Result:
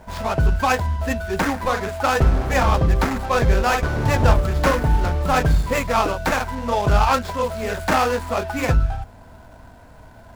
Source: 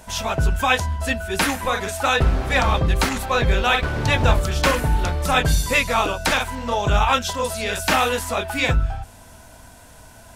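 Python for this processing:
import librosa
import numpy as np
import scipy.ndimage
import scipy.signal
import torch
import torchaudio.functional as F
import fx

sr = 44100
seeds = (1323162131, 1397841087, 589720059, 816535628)

y = scipy.signal.medfilt(x, 15)
y = F.gain(torch.from_numpy(y), 2.0).numpy()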